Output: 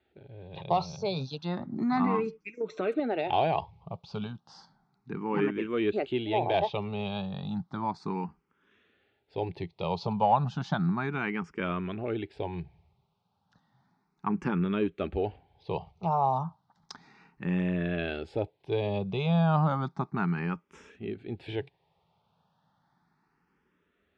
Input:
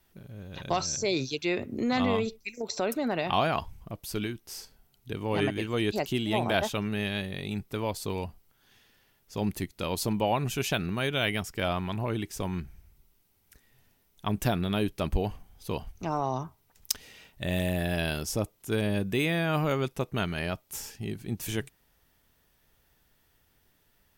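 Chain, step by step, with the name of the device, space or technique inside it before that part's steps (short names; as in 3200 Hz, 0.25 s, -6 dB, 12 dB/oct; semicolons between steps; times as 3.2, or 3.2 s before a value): barber-pole phaser into a guitar amplifier (endless phaser +0.33 Hz; soft clip -14.5 dBFS, distortion -28 dB; speaker cabinet 100–3900 Hz, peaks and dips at 170 Hz +9 dB, 400 Hz +4 dB, 840 Hz +9 dB, 1200 Hz +4 dB, 1900 Hz -4 dB, 3000 Hz -5 dB); 2.06–3 comb 6.4 ms, depth 53%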